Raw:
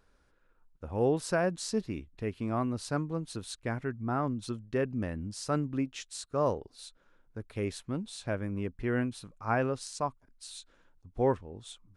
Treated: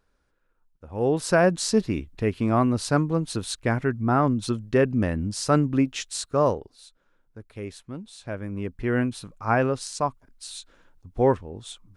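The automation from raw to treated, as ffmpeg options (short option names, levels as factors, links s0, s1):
-af "volume=8.91,afade=t=in:st=0.87:d=0.56:silence=0.223872,afade=t=out:st=6.23:d=0.57:silence=0.251189,afade=t=in:st=8.18:d=0.88:silence=0.354813"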